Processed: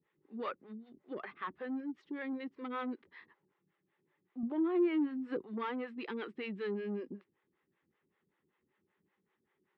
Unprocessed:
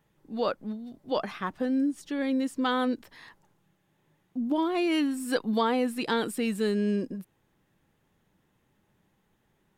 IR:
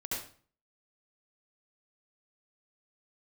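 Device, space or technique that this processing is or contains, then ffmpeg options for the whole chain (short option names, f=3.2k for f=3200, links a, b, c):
guitar amplifier with harmonic tremolo: -filter_complex "[0:a]acrossover=split=440[a][b];[a]aeval=exprs='val(0)*(1-1/2+1/2*cos(2*PI*5.2*n/s))':c=same[c];[b]aeval=exprs='val(0)*(1-1/2-1/2*cos(2*PI*5.2*n/s))':c=same[d];[c][d]amix=inputs=2:normalize=0,asoftclip=type=tanh:threshold=-27.5dB,highpass=110,equalizer=f=120:t=q:w=4:g=-8,equalizer=f=380:t=q:w=4:g=9,equalizer=f=660:t=q:w=4:g=-6,equalizer=f=1.2k:t=q:w=4:g=5,equalizer=f=2k:t=q:w=4:g=7,lowpass=f=3.4k:w=0.5412,lowpass=f=3.4k:w=1.3066,asettb=1/sr,asplit=3[e][f][g];[e]atrim=end=4.434[h];[f]atrim=start=4.43:end=5.44,asetpts=PTS-STARTPTS,afade=t=in:d=0.004:c=qsin,afade=t=out:st=1.006:d=0.004:c=qsin,tiltshelf=f=1.2k:g=6.5[i];[g]atrim=start=5.436[j];[h][i]acrossfade=d=0.004:c1=hsin:c2=qsin[k];[k][j]acrossfade=d=0.004:c1=qsin:c2=hsin,volume=-6dB"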